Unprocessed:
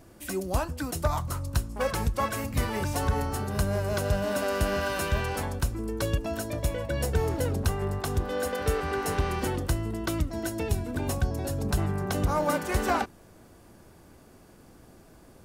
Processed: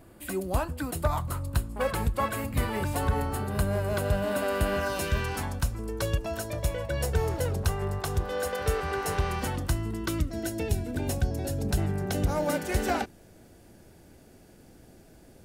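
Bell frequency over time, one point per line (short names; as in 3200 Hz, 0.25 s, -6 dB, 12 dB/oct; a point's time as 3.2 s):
bell -11 dB 0.45 oct
4.77 s 5800 Hz
5.09 s 830 Hz
5.88 s 260 Hz
9.2 s 260 Hz
10.48 s 1100 Hz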